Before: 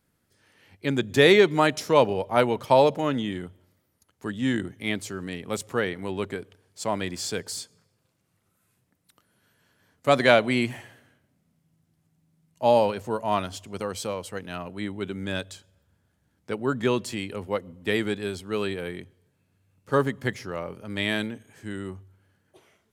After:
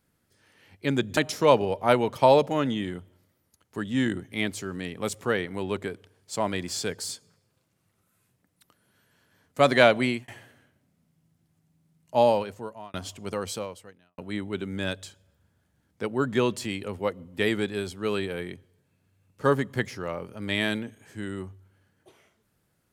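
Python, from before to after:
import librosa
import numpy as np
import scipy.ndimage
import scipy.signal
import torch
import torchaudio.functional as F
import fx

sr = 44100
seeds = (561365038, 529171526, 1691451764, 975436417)

y = fx.edit(x, sr, fx.cut(start_s=1.17, length_s=0.48),
    fx.fade_out_span(start_s=10.51, length_s=0.25),
    fx.fade_out_span(start_s=12.65, length_s=0.77),
    fx.fade_out_span(start_s=13.99, length_s=0.67, curve='qua'), tone=tone)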